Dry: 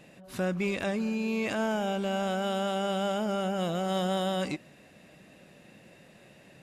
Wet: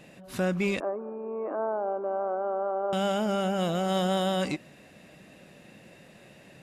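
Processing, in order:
0:00.80–0:02.93: elliptic band-pass filter 300–1,200 Hz, stop band 60 dB
level +2.5 dB

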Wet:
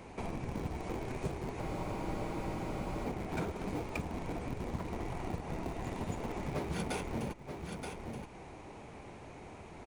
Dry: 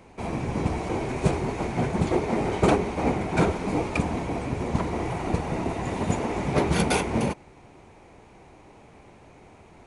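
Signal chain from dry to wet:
in parallel at −4.5 dB: comparator with hysteresis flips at −22 dBFS
on the sum: single-tap delay 926 ms −17 dB
downward compressor 3 to 1, threshold −41 dBFS, peak gain reduction 19 dB
frozen spectrum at 0:01.62, 1.44 s
level +1 dB

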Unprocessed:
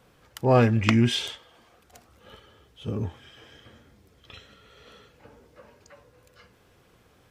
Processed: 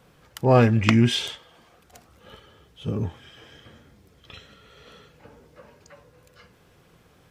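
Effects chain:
parametric band 160 Hz +7.5 dB 0.24 octaves
level +2 dB

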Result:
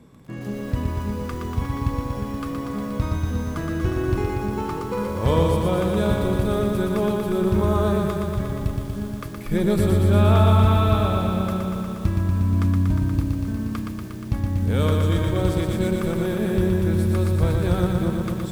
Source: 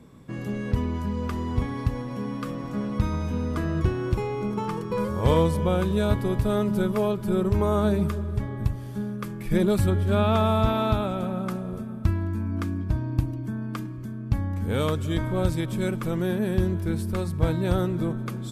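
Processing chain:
feedback echo at a low word length 119 ms, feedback 80%, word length 8 bits, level −4 dB

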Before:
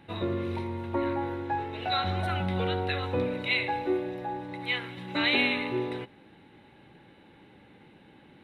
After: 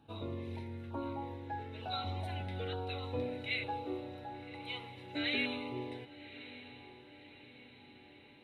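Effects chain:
notch comb filter 180 Hz
auto-filter notch saw down 1.1 Hz 890–2,100 Hz
feedback delay with all-pass diffusion 1,134 ms, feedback 54%, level −15 dB
level −7.5 dB

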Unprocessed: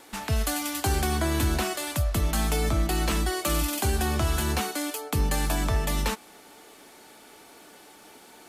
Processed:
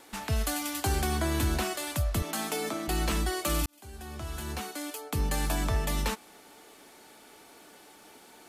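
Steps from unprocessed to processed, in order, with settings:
0:02.22–0:02.88: high-pass filter 220 Hz 24 dB per octave
0:03.66–0:05.46: fade in
level −3 dB

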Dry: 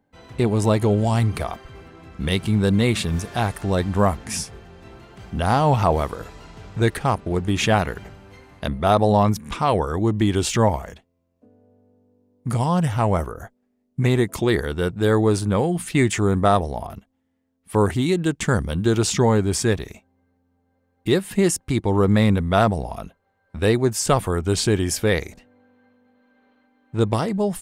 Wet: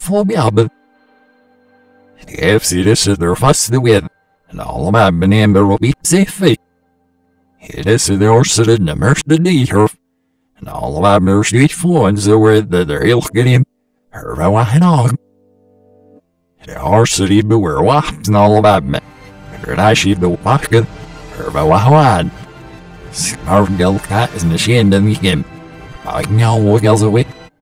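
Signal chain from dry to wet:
played backwards from end to start
comb filter 6.5 ms, depth 60%
in parallel at −7.5 dB: sine wavefolder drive 6 dB, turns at −3.5 dBFS
on the sum: level +2 dB

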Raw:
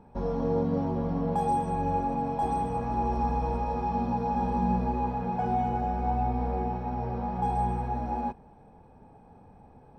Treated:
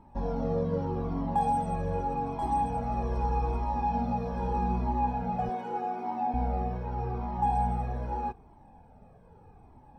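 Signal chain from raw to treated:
0:05.49–0:06.34: high-pass filter 220 Hz 24 dB per octave
flanger whose copies keep moving one way falling 0.82 Hz
level +3 dB

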